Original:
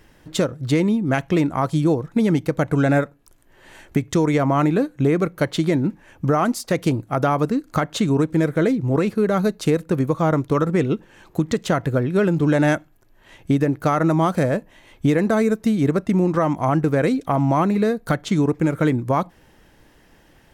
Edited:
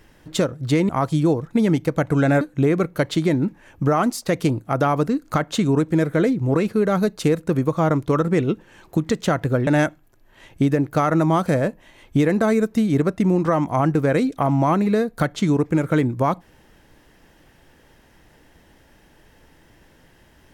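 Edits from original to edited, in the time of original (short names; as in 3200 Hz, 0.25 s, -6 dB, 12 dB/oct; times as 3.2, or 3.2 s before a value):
0.89–1.5 cut
3.02–4.83 cut
12.09–12.56 cut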